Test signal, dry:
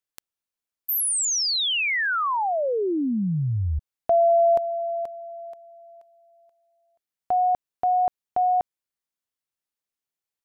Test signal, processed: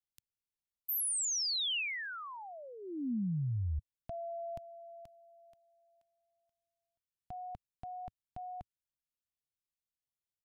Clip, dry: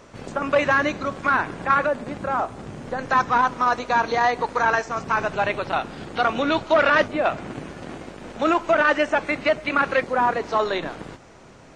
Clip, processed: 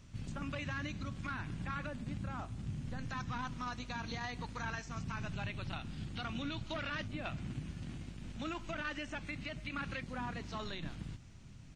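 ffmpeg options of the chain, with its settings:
-af "firequalizer=gain_entry='entry(100,0);entry(440,-26);entry(2800,-11)':delay=0.05:min_phase=1,alimiter=level_in=2.37:limit=0.0631:level=0:latency=1:release=109,volume=0.422,volume=1.12"

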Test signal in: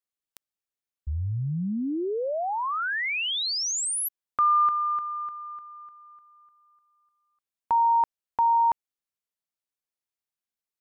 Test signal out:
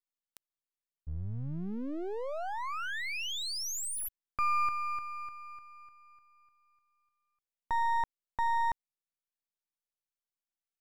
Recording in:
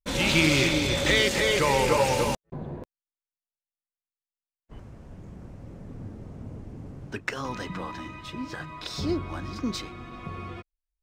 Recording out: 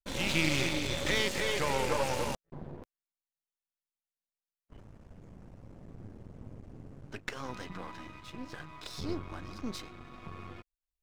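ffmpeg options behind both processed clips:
-af "aeval=exprs='if(lt(val(0),0),0.251*val(0),val(0))':c=same,volume=0.562"

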